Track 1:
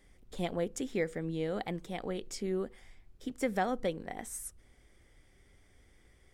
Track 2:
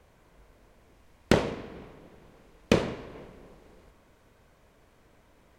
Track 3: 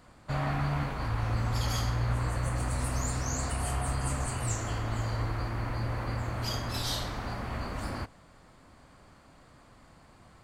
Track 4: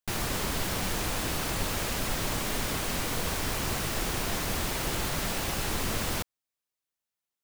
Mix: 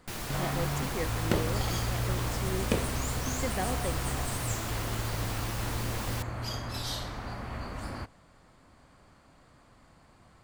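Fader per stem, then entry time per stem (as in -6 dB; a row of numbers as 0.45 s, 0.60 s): -3.0 dB, -7.5 dB, -2.5 dB, -6.5 dB; 0.00 s, 0.00 s, 0.00 s, 0.00 s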